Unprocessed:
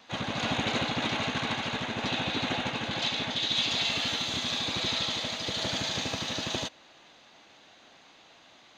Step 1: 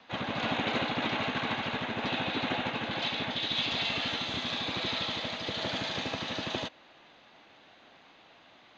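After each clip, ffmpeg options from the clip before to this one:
-filter_complex "[0:a]lowpass=3.4k,acrossover=split=180|1400[a][b][c];[a]alimiter=level_in=11.5dB:limit=-24dB:level=0:latency=1:release=467,volume=-11.5dB[d];[d][b][c]amix=inputs=3:normalize=0"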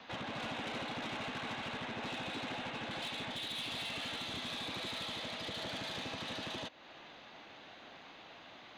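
-af "acompressor=threshold=-46dB:ratio=2,asoftclip=type=tanh:threshold=-39dB,volume=3.5dB"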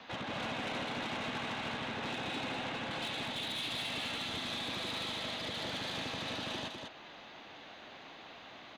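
-af "aecho=1:1:201:0.562,volume=1.5dB"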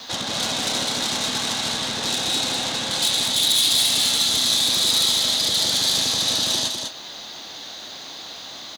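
-filter_complex "[0:a]aexciter=amount=9.7:drive=4.6:freq=3.8k,asplit=2[a][b];[b]adelay=28,volume=-11dB[c];[a][c]amix=inputs=2:normalize=0,volume=8.5dB"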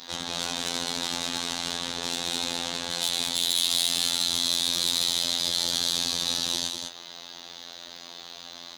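-af "afftfilt=real='hypot(re,im)*cos(PI*b)':imag='0':win_size=2048:overlap=0.75,volume=-3dB"

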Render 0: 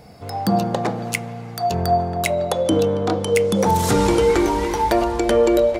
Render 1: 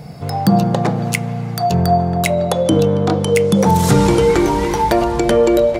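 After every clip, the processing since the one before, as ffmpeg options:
-filter_complex "[0:a]equalizer=f=150:w=2.9:g=14,asplit=2[a][b];[b]acompressor=threshold=-25dB:ratio=6,volume=-2dB[c];[a][c]amix=inputs=2:normalize=0,volume=1dB"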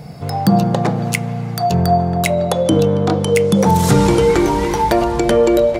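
-af anull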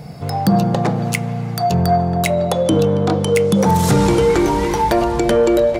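-af "asoftclip=type=tanh:threshold=-5dB"

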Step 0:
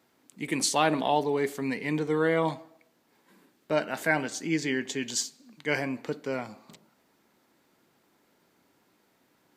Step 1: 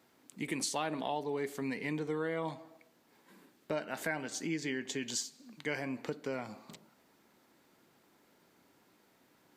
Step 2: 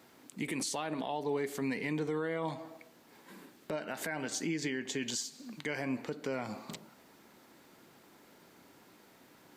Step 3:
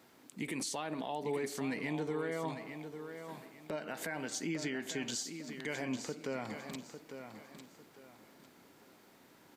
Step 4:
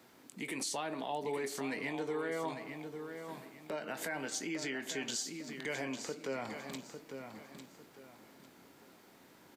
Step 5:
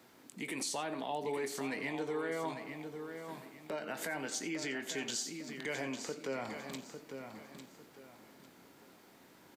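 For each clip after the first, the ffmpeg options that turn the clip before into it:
-af "acompressor=threshold=-35dB:ratio=3"
-af "alimiter=level_in=9dB:limit=-24dB:level=0:latency=1:release=181,volume=-9dB,volume=7.5dB"
-af "aecho=1:1:851|1702|2553:0.355|0.103|0.0298,volume=-2.5dB"
-filter_complex "[0:a]acrossover=split=320[a][b];[a]alimiter=level_in=20dB:limit=-24dB:level=0:latency=1:release=195,volume=-20dB[c];[c][b]amix=inputs=2:normalize=0,asplit=2[d][e];[e]adelay=22,volume=-12dB[f];[d][f]amix=inputs=2:normalize=0,volume=1dB"
-af "aecho=1:1:87:0.15"

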